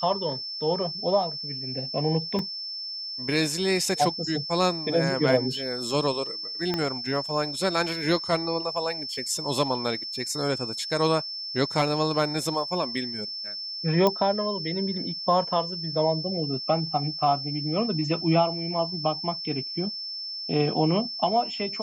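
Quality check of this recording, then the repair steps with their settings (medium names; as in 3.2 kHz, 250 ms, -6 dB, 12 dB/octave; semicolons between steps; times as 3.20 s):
whine 5.3 kHz -32 dBFS
2.39 s: dropout 2.4 ms
6.74 s: pop -13 dBFS
14.07 s: pop -9 dBFS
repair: de-click; band-stop 5.3 kHz, Q 30; interpolate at 2.39 s, 2.4 ms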